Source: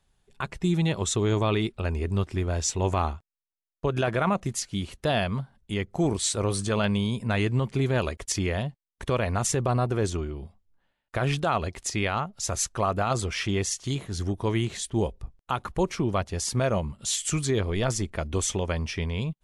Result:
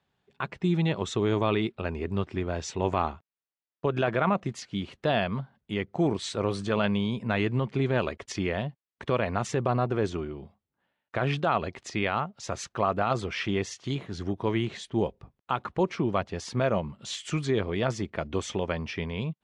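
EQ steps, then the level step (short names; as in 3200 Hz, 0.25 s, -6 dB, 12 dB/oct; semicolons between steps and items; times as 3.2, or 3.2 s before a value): BPF 130–3500 Hz; 0.0 dB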